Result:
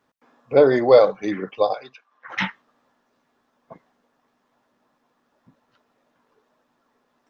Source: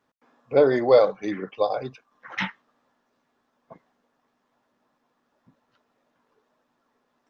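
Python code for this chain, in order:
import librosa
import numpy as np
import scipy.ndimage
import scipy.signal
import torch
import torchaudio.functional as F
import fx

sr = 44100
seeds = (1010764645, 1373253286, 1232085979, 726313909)

y = fx.bandpass_q(x, sr, hz=fx.line((1.73, 3800.0), (2.28, 1200.0)), q=0.63, at=(1.73, 2.28), fade=0.02)
y = F.gain(torch.from_numpy(y), 3.5).numpy()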